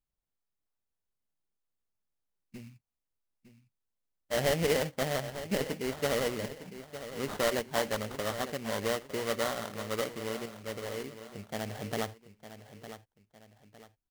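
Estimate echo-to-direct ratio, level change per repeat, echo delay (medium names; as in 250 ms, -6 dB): -12.0 dB, -8.5 dB, 907 ms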